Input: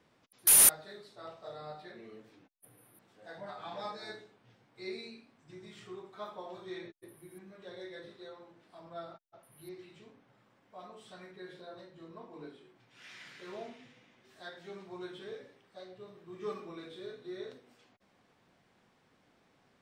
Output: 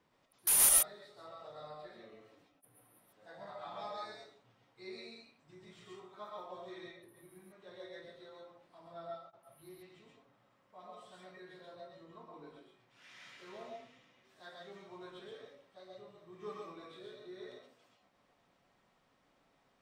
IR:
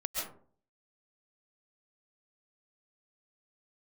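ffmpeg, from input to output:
-filter_complex "[0:a]equalizer=f=980:t=o:w=0.47:g=4.5[s0];[1:a]atrim=start_sample=2205,atrim=end_sample=6174[s1];[s0][s1]afir=irnorm=-1:irlink=0,volume=0.531"

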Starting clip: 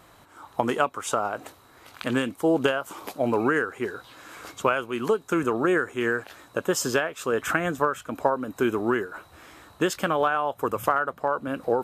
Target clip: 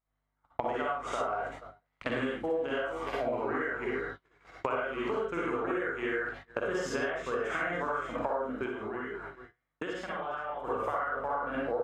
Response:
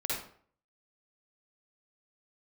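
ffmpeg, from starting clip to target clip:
-filter_complex "[0:a]lowpass=5500,equalizer=f=790:w=0.79:g=6.5,aeval=exprs='val(0)+0.00631*(sin(2*PI*50*n/s)+sin(2*PI*2*50*n/s)/2+sin(2*PI*3*50*n/s)/3+sin(2*PI*4*50*n/s)/4+sin(2*PI*5*50*n/s)/5)':c=same,equalizer=f=2100:w=2.8:g=8.5,aecho=1:1:47|409:0.631|0.158,agate=range=0.00708:threshold=0.0282:ratio=16:detection=peak[s0];[1:a]atrim=start_sample=2205,atrim=end_sample=4410,asetrate=37044,aresample=44100[s1];[s0][s1]afir=irnorm=-1:irlink=0,acompressor=threshold=0.0447:ratio=8,asplit=3[s2][s3][s4];[s2]afade=t=out:st=8.65:d=0.02[s5];[s3]flanger=delay=4:depth=4.4:regen=81:speed=1:shape=sinusoidal,afade=t=in:st=8.65:d=0.02,afade=t=out:st=10.66:d=0.02[s6];[s4]afade=t=in:st=10.66:d=0.02[s7];[s5][s6][s7]amix=inputs=3:normalize=0,volume=0.708"

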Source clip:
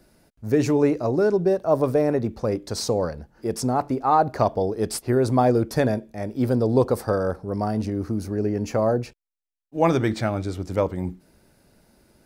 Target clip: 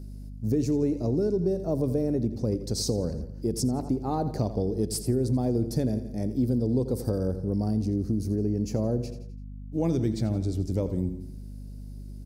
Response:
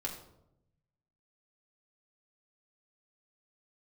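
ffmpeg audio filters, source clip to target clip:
-af "firequalizer=gain_entry='entry(260,0);entry(670,-13);entry(1200,-21);entry(4800,-4)':delay=0.05:min_phase=1,aecho=1:1:85|170|255|340:0.211|0.0951|0.0428|0.0193,acompressor=threshold=0.0355:ratio=3,aeval=exprs='val(0)+0.00708*(sin(2*PI*50*n/s)+sin(2*PI*2*50*n/s)/2+sin(2*PI*3*50*n/s)/3+sin(2*PI*4*50*n/s)/4+sin(2*PI*5*50*n/s)/5)':c=same,volume=1.68"

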